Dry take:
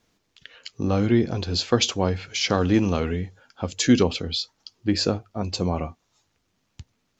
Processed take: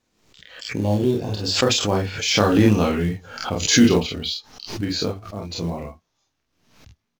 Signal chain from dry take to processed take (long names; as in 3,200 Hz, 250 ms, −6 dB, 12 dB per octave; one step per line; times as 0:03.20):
source passing by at 0:02.75, 24 m/s, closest 29 metres
healed spectral selection 0:00.65–0:01.40, 1,100–2,700 Hz both
ambience of single reflections 29 ms −3 dB, 47 ms −4 dB, 58 ms −13 dB
in parallel at −5 dB: floating-point word with a short mantissa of 2 bits
on the sum: background raised ahead of every attack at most 79 dB per second
level −2 dB